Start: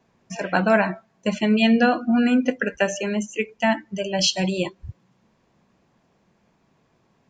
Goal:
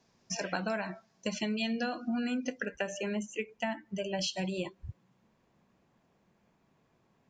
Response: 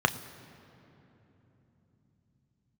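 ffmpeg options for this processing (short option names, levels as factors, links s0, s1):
-af "asetnsamples=n=441:p=0,asendcmd='2.65 equalizer g -2',equalizer=f=5300:w=1.3:g=13,acompressor=threshold=0.0631:ratio=6,volume=0.473"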